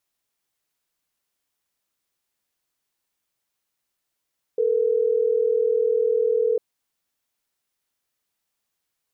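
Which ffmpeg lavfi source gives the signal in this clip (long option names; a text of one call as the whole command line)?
ffmpeg -f lavfi -i "aevalsrc='0.0944*(sin(2*PI*440*t)+sin(2*PI*480*t))*clip(min(mod(t,6),2-mod(t,6))/0.005,0,1)':duration=3.12:sample_rate=44100" out.wav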